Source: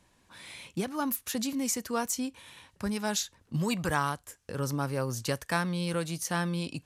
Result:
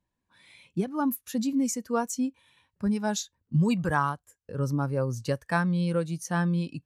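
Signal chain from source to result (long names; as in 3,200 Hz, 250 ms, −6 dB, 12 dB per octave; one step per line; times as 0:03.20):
every bin expanded away from the loudest bin 1.5 to 1
level +2 dB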